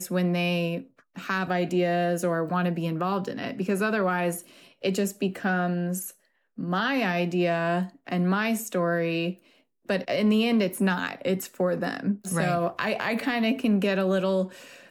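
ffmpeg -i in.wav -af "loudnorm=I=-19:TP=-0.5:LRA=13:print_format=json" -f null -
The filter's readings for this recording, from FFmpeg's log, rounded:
"input_i" : "-26.4",
"input_tp" : "-10.5",
"input_lra" : "1.8",
"input_thresh" : "-36.7",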